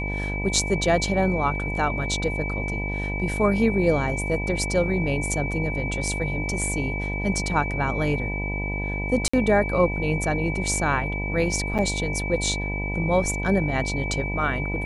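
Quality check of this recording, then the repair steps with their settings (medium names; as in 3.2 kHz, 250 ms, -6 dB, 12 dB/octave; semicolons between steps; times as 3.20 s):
buzz 50 Hz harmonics 20 -29 dBFS
whine 2.3 kHz -30 dBFS
9.28–9.34 s: dropout 55 ms
11.78–11.79 s: dropout 7.6 ms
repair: band-stop 2.3 kHz, Q 30; de-hum 50 Hz, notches 20; interpolate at 9.28 s, 55 ms; interpolate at 11.78 s, 7.6 ms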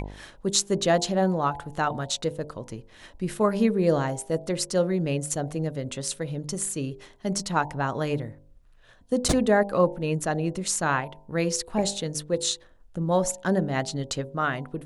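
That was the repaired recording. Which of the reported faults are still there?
nothing left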